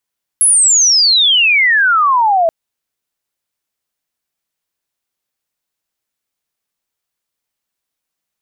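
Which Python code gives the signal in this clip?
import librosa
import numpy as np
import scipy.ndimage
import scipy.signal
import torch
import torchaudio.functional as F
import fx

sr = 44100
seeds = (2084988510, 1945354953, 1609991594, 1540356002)

y = fx.chirp(sr, length_s=2.08, from_hz=11000.0, to_hz=640.0, law='logarithmic', from_db=-6.5, to_db=-8.5)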